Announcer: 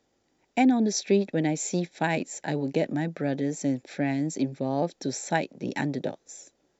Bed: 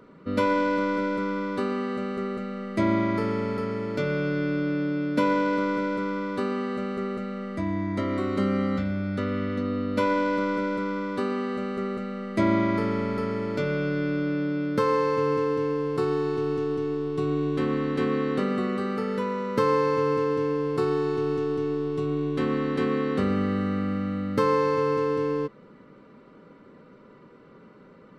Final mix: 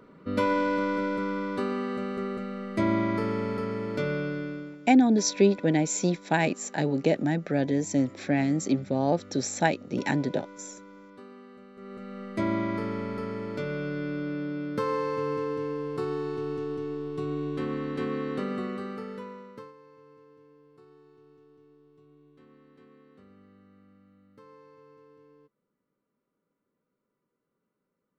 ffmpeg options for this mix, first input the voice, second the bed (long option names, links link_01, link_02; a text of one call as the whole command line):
ffmpeg -i stem1.wav -i stem2.wav -filter_complex "[0:a]adelay=4300,volume=2dB[link_01];[1:a]volume=12.5dB,afade=type=out:start_time=4.06:duration=0.72:silence=0.125893,afade=type=in:start_time=11.75:duration=0.46:silence=0.188365,afade=type=out:start_time=18.6:duration=1.13:silence=0.0530884[link_02];[link_01][link_02]amix=inputs=2:normalize=0" out.wav